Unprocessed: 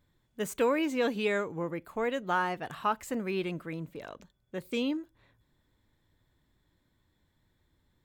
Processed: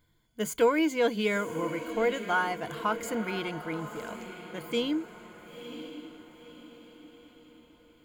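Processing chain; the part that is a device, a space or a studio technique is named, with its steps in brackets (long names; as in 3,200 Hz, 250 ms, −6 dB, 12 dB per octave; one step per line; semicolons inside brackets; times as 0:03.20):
exciter from parts (in parallel at −4.5 dB: high-pass filter 2,100 Hz 6 dB per octave + soft clipping −39 dBFS, distortion −7 dB)
on the sum: EQ curve with evenly spaced ripples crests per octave 1.8, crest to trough 10 dB
feedback delay with all-pass diffusion 992 ms, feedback 44%, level −11 dB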